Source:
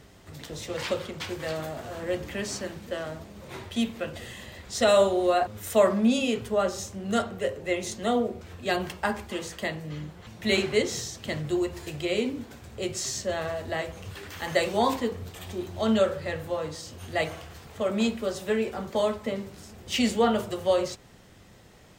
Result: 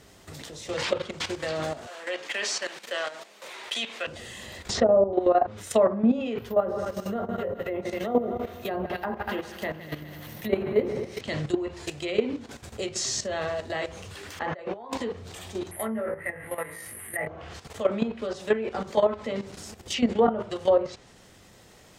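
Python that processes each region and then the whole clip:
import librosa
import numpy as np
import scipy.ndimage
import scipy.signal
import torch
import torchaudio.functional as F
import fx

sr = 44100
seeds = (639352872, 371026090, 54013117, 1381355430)

y = fx.chain(x, sr, fx.highpass(hz=550.0, slope=12),
    fx.peak_eq(hz=2500.0, db=6.0, octaves=1.9), at=(1.87, 4.07))
y = fx.chain(y, sr, fx.env_lowpass_down(base_hz=600.0, full_db=-18.5),
    fx.quant_companded(bits=8),
    fx.pre_swell(db_per_s=51.0), at=(4.69, 5.13))
y = fx.chain(y, sr, fx.echo_heads(ms=80, heads='second and third', feedback_pct=54, wet_db=-12.0),
    fx.resample_bad(factor=3, down='filtered', up='zero_stuff'), at=(6.38, 11.21))
y = fx.chain(y, sr, fx.lowpass(hz=1400.0, slope=12),
    fx.low_shelf(hz=250.0, db=-9.5),
    fx.over_compress(threshold_db=-38.0, ratio=-1.0), at=(14.39, 14.93))
y = fx.chain(y, sr, fx.lowpass_res(hz=2000.0, q=7.6),
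    fx.comb_fb(f0_hz=56.0, decay_s=0.26, harmonics='all', damping=0.0, mix_pct=90),
    fx.resample_bad(factor=4, down='none', up='zero_stuff'), at=(15.71, 17.27))
y = fx.env_lowpass_down(y, sr, base_hz=990.0, full_db=-19.0)
y = fx.bass_treble(y, sr, bass_db=-4, treble_db=4)
y = fx.level_steps(y, sr, step_db=12)
y = F.gain(torch.from_numpy(y), 6.5).numpy()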